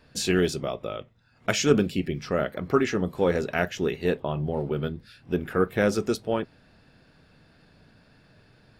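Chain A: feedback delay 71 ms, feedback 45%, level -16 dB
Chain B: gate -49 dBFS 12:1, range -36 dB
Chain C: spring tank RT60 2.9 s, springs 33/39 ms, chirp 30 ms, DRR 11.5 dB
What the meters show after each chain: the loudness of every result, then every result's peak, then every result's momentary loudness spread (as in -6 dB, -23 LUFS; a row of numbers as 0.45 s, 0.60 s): -26.5 LUFS, -26.5 LUFS, -26.0 LUFS; -6.0 dBFS, -6.0 dBFS, -6.0 dBFS; 10 LU, 10 LU, 13 LU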